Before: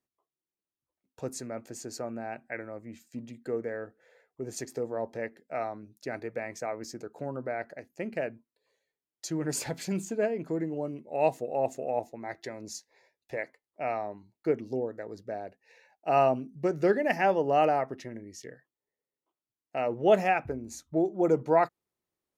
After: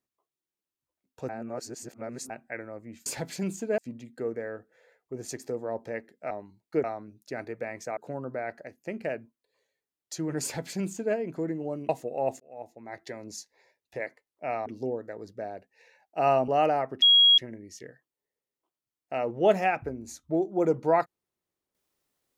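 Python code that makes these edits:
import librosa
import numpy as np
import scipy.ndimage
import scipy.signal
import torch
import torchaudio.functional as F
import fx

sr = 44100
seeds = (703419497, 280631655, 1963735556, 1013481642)

y = fx.edit(x, sr, fx.reverse_span(start_s=1.29, length_s=1.01),
    fx.cut(start_s=6.72, length_s=0.37),
    fx.duplicate(start_s=9.55, length_s=0.72, to_s=3.06),
    fx.cut(start_s=11.01, length_s=0.25),
    fx.fade_in_span(start_s=11.77, length_s=0.72),
    fx.move(start_s=14.03, length_s=0.53, to_s=5.59),
    fx.cut(start_s=16.38, length_s=1.09),
    fx.insert_tone(at_s=18.01, length_s=0.36, hz=3300.0, db=-14.5), tone=tone)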